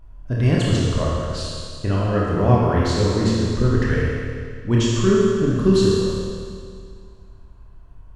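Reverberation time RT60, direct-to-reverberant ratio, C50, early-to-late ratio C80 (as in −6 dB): 2.1 s, −5.5 dB, −2.5 dB, −0.5 dB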